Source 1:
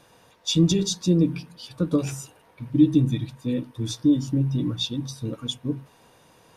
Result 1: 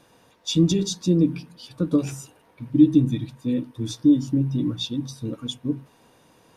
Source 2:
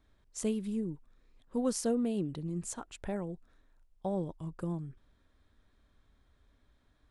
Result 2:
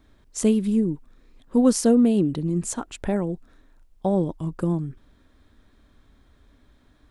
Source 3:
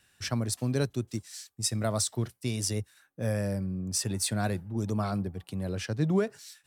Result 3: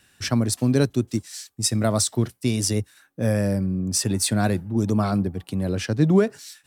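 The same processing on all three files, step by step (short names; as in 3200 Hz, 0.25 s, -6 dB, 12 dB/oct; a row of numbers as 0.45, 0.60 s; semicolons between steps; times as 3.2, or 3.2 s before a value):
bell 270 Hz +5 dB 0.92 oct; match loudness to -23 LUFS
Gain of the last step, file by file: -2.0, +10.0, +6.5 dB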